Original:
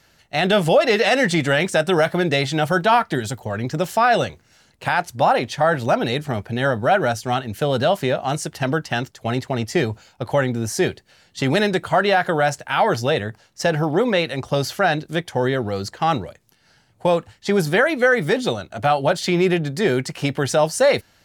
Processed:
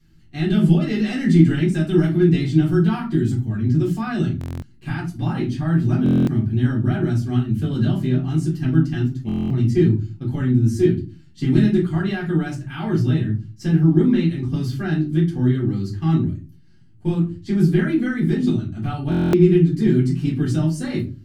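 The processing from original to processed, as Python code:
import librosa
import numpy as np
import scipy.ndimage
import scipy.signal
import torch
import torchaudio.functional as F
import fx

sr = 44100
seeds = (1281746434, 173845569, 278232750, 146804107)

y = fx.curve_eq(x, sr, hz=(340.0, 490.0, 1600.0), db=(0, -30, -16))
y = fx.room_shoebox(y, sr, seeds[0], volume_m3=130.0, walls='furnished', distance_m=3.8)
y = fx.buffer_glitch(y, sr, at_s=(4.39, 6.04, 9.27, 19.1), block=1024, repeats=9)
y = y * 10.0 ** (-3.0 / 20.0)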